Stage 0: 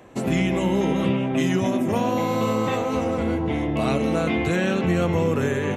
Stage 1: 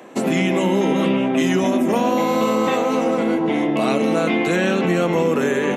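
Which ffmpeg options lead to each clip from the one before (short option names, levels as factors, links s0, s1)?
-filter_complex "[0:a]highpass=f=190:w=0.5412,highpass=f=190:w=1.3066,asplit=2[s0][s1];[s1]alimiter=limit=0.112:level=0:latency=1:release=131,volume=1.26[s2];[s0][s2]amix=inputs=2:normalize=0"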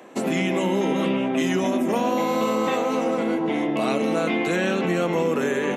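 -af "lowshelf=f=170:g=-3.5,volume=0.668"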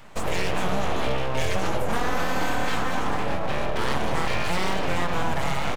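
-filter_complex "[0:a]aeval=exprs='abs(val(0))':c=same,asplit=2[s0][s1];[s1]adelay=22,volume=0.237[s2];[s0][s2]amix=inputs=2:normalize=0"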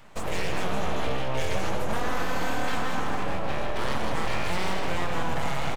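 -af "aecho=1:1:160:0.501,volume=0.631"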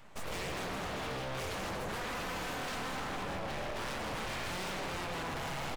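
-af "aeval=exprs='0.0376*(abs(mod(val(0)/0.0376+3,4)-2)-1)':c=same,volume=0.562"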